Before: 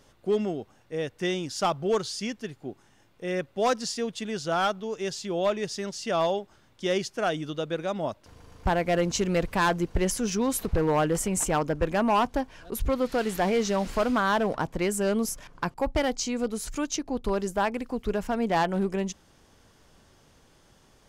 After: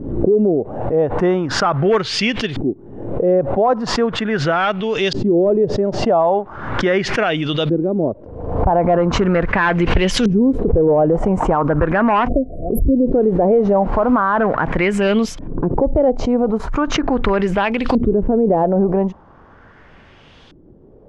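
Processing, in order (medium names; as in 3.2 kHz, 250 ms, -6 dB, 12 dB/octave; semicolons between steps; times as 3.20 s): spectral selection erased 12.28–13.12 s, 750–10000 Hz; LFO low-pass saw up 0.39 Hz 290–3700 Hz; loudness maximiser +18.5 dB; swell ahead of each attack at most 59 dB/s; trim -6.5 dB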